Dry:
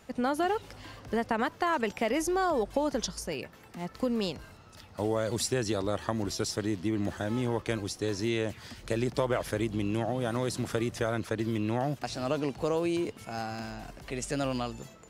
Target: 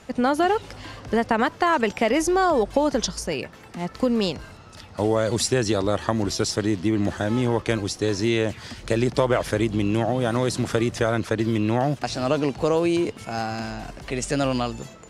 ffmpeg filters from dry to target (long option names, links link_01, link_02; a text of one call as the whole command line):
ffmpeg -i in.wav -af "lowpass=10000,volume=8dB" out.wav